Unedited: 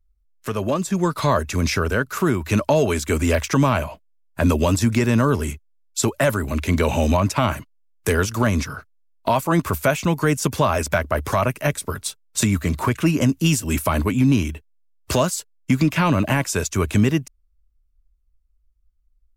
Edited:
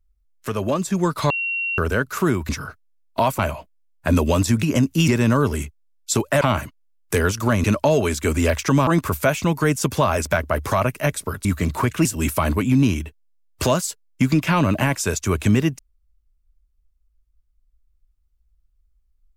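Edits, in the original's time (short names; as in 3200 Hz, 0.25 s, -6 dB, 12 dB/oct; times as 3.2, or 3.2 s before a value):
1.3–1.78 bleep 2740 Hz -21.5 dBFS
2.49–3.72 swap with 8.58–9.48
6.29–7.35 cut
12.06–12.49 cut
13.09–13.54 move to 4.96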